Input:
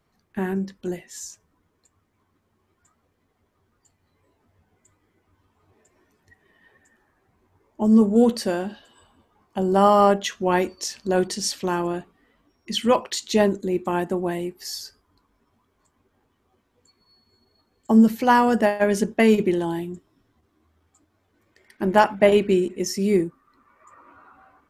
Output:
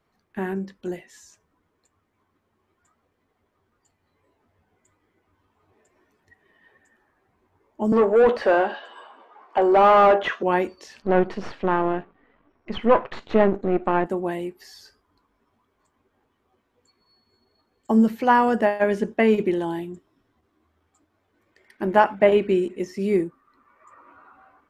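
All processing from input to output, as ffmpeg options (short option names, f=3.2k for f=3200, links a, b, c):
-filter_complex "[0:a]asettb=1/sr,asplit=3[a][b][c];[a]atrim=end=7.924[d];[b]atrim=start=7.92:end=10.43,asetpts=PTS-STARTPTS,afade=t=in:d=0.004:c=qsin,afade=t=out:st=2.506:d=0.004:c=qsin,highpass=450,highshelf=f=7.2k:g=-10.5,asplit=2[e][f];[f]highpass=f=720:p=1,volume=26dB,asoftclip=type=tanh:threshold=-6dB[g];[e][g]amix=inputs=2:normalize=0,lowpass=f=1.1k:p=1,volume=-6dB[h];[c]atrim=start=10.426[i];[d][h]acrossfade=d=0.004:c1=hsin:c2=qsin[j];[j][i]acrossfade=d=0.004:c1=qsin:c2=hsin,asettb=1/sr,asplit=3[k][l][m];[k]atrim=end=11.024[n];[l]atrim=start=11.02:end=14.06,asetpts=PTS-STARTPTS,afade=t=in:d=0.004:c=qsin,afade=t=out:st=3.036:d=0.004:c=qsin,aeval=exprs='if(lt(val(0),0),0.251*val(0),val(0))':c=same,lowpass=2.2k,acontrast=67[o];[m]atrim=start=14.056[p];[n][o]acrossfade=d=0.004:c1=hsin:c2=qsin[q];[q][p]acrossfade=d=0.004:c1=qsin:c2=hsin,acrossover=split=3000[r][s];[s]acompressor=threshold=-43dB:ratio=4:attack=1:release=60[t];[r][t]amix=inputs=2:normalize=0,bass=f=250:g=-5,treble=f=4k:g=-6"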